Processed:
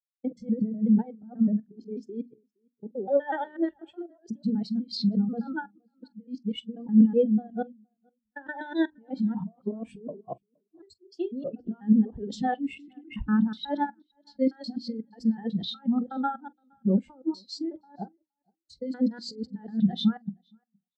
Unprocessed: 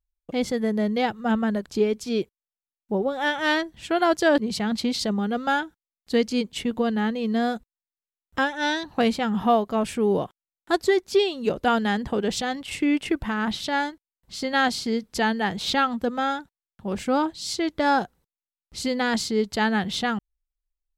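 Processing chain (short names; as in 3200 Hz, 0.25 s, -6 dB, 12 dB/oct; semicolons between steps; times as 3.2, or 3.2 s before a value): local time reversal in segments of 0.123 s; negative-ratio compressor -27 dBFS, ratio -0.5; notches 60/120/180/240/300/360 Hz; doubler 46 ms -13 dB; feedback echo 0.467 s, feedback 27%, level -14 dB; spectral expander 2.5:1; gain +3 dB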